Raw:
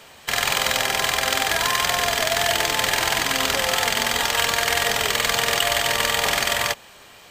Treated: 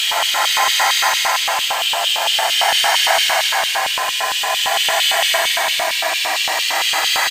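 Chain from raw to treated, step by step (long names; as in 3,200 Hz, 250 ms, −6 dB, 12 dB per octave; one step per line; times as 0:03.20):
slap from a distant wall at 40 metres, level −8 dB
extreme stretch with random phases 46×, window 0.05 s, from 0:03.06
auto-filter high-pass square 4.4 Hz 760–3,000 Hz
level +2 dB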